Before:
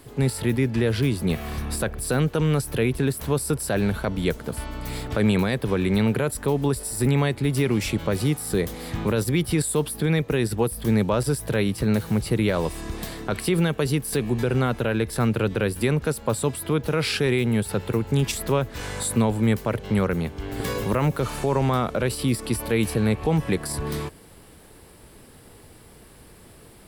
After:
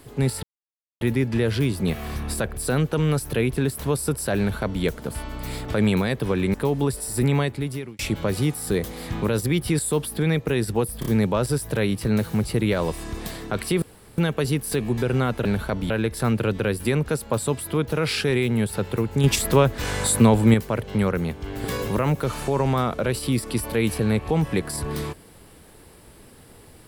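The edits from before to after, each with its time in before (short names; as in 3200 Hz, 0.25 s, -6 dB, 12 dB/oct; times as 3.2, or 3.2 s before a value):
0.43 insert silence 0.58 s
3.8–4.25 copy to 14.86
5.96–6.37 cut
7.23–7.82 fade out
10.83 stutter 0.03 s, 3 plays
13.59 insert room tone 0.36 s
18.2–19.5 gain +5.5 dB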